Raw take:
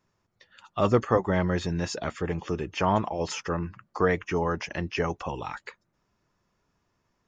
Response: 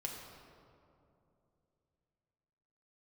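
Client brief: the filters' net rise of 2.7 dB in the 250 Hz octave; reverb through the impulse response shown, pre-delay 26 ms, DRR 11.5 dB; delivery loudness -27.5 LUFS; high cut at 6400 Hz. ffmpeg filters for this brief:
-filter_complex "[0:a]lowpass=6.4k,equalizer=f=250:t=o:g=4,asplit=2[a][b];[1:a]atrim=start_sample=2205,adelay=26[c];[b][c]afir=irnorm=-1:irlink=0,volume=-11dB[d];[a][d]amix=inputs=2:normalize=0,volume=-1dB"

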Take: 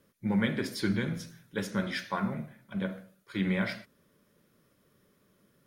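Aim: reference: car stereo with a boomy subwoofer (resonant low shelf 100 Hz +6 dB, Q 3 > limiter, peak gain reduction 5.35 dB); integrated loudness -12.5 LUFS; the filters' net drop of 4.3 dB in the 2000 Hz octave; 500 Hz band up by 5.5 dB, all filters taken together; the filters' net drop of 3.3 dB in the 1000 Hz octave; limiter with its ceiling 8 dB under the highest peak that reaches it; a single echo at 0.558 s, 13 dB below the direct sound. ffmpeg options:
-af "equalizer=f=500:t=o:g=8.5,equalizer=f=1k:t=o:g=-5.5,equalizer=f=2k:t=o:g=-4,alimiter=limit=-23dB:level=0:latency=1,lowshelf=f=100:t=q:w=3:g=6,aecho=1:1:558:0.224,volume=26dB,alimiter=limit=-1.5dB:level=0:latency=1"

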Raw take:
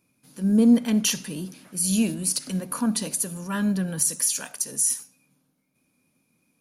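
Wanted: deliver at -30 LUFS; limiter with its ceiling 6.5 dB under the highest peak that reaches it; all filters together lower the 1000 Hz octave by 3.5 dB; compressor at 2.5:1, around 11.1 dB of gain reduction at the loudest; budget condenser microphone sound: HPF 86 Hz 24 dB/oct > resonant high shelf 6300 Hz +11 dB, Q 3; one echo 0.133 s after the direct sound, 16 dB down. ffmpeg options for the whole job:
-af "equalizer=f=1k:t=o:g=-4,acompressor=threshold=-30dB:ratio=2.5,alimiter=limit=-21.5dB:level=0:latency=1,highpass=f=86:w=0.5412,highpass=f=86:w=1.3066,highshelf=f=6.3k:t=q:w=3:g=11,aecho=1:1:133:0.158,volume=-9.5dB"

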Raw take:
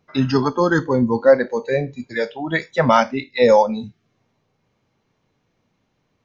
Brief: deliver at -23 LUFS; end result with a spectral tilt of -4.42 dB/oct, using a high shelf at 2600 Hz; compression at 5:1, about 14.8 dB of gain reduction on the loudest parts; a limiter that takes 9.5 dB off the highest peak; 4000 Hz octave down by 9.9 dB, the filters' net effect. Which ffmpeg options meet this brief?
-af "highshelf=f=2.6k:g=-7,equalizer=f=4k:t=o:g=-6.5,acompressor=threshold=-25dB:ratio=5,volume=11dB,alimiter=limit=-12.5dB:level=0:latency=1"

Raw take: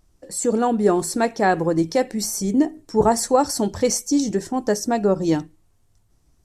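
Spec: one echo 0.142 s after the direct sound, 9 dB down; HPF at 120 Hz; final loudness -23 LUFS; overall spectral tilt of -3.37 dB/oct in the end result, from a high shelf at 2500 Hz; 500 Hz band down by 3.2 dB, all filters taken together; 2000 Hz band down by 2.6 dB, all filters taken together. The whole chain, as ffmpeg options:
-af "highpass=120,equalizer=f=500:t=o:g=-4,equalizer=f=2k:t=o:g=-5.5,highshelf=f=2.5k:g=6,aecho=1:1:142:0.355,volume=-2dB"

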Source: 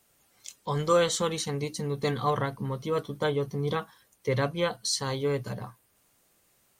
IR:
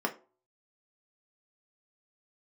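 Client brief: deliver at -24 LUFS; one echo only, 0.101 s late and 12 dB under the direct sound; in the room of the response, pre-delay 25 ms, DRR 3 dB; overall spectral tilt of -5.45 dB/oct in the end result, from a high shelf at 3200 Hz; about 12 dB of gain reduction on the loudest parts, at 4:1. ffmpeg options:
-filter_complex "[0:a]highshelf=f=3.2k:g=-7,acompressor=threshold=-33dB:ratio=4,aecho=1:1:101:0.251,asplit=2[a][b];[1:a]atrim=start_sample=2205,adelay=25[c];[b][c]afir=irnorm=-1:irlink=0,volume=-10.5dB[d];[a][d]amix=inputs=2:normalize=0,volume=10.5dB"

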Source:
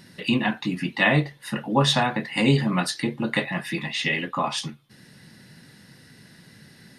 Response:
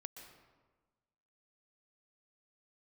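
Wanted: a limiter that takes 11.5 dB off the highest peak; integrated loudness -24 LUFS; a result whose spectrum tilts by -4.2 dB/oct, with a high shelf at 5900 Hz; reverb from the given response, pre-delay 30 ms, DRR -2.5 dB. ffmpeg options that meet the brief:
-filter_complex "[0:a]highshelf=f=5.9k:g=8.5,alimiter=limit=-15.5dB:level=0:latency=1,asplit=2[a][b];[1:a]atrim=start_sample=2205,adelay=30[c];[b][c]afir=irnorm=-1:irlink=0,volume=7dB[d];[a][d]amix=inputs=2:normalize=0,volume=-1.5dB"

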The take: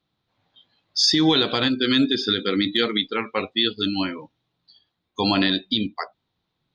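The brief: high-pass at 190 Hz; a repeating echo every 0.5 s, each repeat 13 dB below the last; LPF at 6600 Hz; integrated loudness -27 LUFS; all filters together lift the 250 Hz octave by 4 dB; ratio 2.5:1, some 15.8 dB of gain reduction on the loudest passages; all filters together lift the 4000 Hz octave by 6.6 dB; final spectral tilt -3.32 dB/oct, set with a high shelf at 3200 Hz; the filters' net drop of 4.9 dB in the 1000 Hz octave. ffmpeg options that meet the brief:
-af "highpass=190,lowpass=6.6k,equalizer=f=250:t=o:g=6.5,equalizer=f=1k:t=o:g=-8.5,highshelf=f=3.2k:g=5.5,equalizer=f=4k:t=o:g=5,acompressor=threshold=-35dB:ratio=2.5,aecho=1:1:500|1000|1500:0.224|0.0493|0.0108,volume=3.5dB"

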